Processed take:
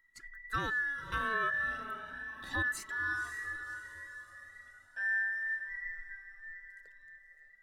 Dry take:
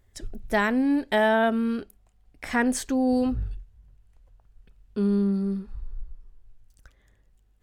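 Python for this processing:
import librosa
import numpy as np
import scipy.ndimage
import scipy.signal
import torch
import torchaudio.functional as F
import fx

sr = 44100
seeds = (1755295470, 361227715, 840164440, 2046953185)

y = fx.band_invert(x, sr, width_hz=2000)
y = fx.echo_diffused(y, sr, ms=551, feedback_pct=48, wet_db=-9.5)
y = fx.comb_cascade(y, sr, direction='rising', hz=0.35)
y = y * librosa.db_to_amplitude(-7.5)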